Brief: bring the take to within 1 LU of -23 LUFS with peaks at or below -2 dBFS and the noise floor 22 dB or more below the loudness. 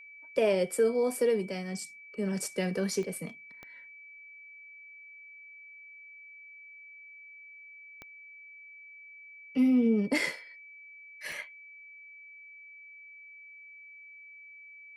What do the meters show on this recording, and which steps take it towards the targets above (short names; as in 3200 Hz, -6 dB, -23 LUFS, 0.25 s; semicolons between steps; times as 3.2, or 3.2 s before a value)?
clicks 4; steady tone 2300 Hz; tone level -48 dBFS; loudness -30.0 LUFS; peak -15.0 dBFS; loudness target -23.0 LUFS
-> de-click; notch 2300 Hz, Q 30; gain +7 dB